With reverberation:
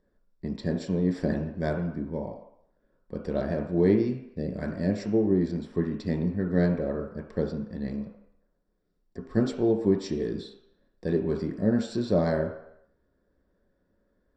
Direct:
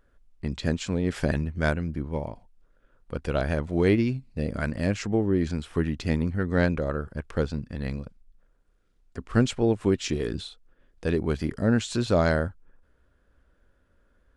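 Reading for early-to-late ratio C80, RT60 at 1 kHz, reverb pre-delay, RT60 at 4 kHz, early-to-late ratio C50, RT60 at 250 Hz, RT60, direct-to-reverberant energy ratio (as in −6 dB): 9.5 dB, 0.80 s, 3 ms, 0.70 s, 6.5 dB, 0.55 s, 0.75 s, 1.5 dB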